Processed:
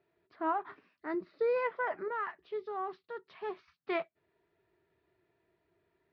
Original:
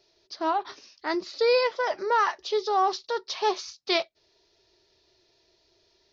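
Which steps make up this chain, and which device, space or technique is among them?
bass cabinet (cabinet simulation 83–2000 Hz, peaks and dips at 170 Hz +7 dB, 370 Hz -3 dB, 550 Hz -9 dB, 850 Hz -5 dB); 0.97–1.56 s: time-frequency box 660–3600 Hz -6 dB; 2.08–3.68 s: peaking EQ 960 Hz -9.5 dB 2.6 oct; trim -3 dB

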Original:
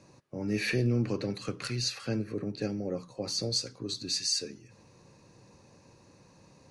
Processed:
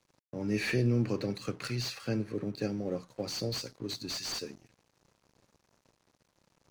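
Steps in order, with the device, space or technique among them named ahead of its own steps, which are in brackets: early transistor amplifier (crossover distortion -54.5 dBFS; slew-rate limiter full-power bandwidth 83 Hz)

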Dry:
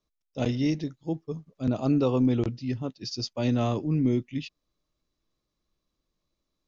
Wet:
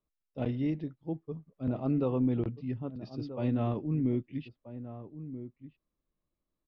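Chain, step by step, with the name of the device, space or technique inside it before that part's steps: shout across a valley (distance through air 440 m; echo from a far wall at 220 m, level -12 dB); trim -4.5 dB

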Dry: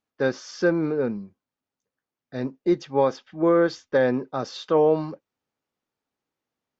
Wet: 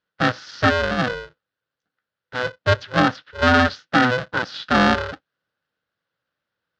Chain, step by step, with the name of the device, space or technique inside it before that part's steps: ring modulator pedal into a guitar cabinet (polarity switched at an audio rate 250 Hz; cabinet simulation 110–4500 Hz, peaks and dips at 230 Hz -5 dB, 380 Hz -8 dB, 710 Hz -8 dB, 1 kHz -7 dB, 1.5 kHz +8 dB, 2.3 kHz -6 dB); trim +6.5 dB

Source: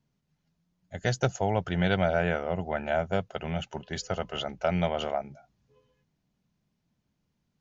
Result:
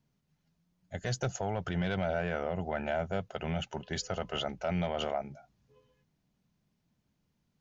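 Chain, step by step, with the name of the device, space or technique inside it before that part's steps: soft clipper into limiter (saturation -14.5 dBFS, distortion -21 dB; peak limiter -23 dBFS, peak gain reduction 7.5 dB)

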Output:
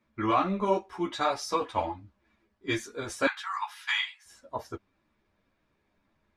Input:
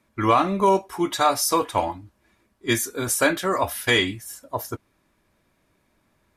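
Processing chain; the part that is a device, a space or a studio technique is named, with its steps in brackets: string-machine ensemble chorus (three-phase chorus; low-pass 4.6 kHz 12 dB/octave); 3.27–4.26 s: steep high-pass 820 Hz 96 dB/octave; trim -3.5 dB

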